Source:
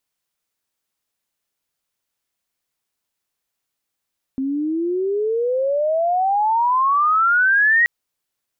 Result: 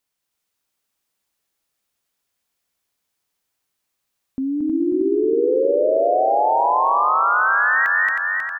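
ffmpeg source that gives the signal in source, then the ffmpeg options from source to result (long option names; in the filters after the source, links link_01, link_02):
-f lavfi -i "aevalsrc='pow(10,(-11.5+8*(t/3.48-1))/20)*sin(2*PI*262*3.48/(34.5*log(2)/12)*(exp(34.5*log(2)/12*t/3.48)-1))':duration=3.48:sample_rate=44100"
-filter_complex "[0:a]asplit=2[link_01][link_02];[link_02]aecho=0:1:226:0.531[link_03];[link_01][link_03]amix=inputs=2:normalize=0,alimiter=limit=-13.5dB:level=0:latency=1:release=76,asplit=2[link_04][link_05];[link_05]aecho=0:1:316|632|948|1264|1580|1896|2212|2528:0.668|0.381|0.217|0.124|0.0706|0.0402|0.0229|0.0131[link_06];[link_04][link_06]amix=inputs=2:normalize=0"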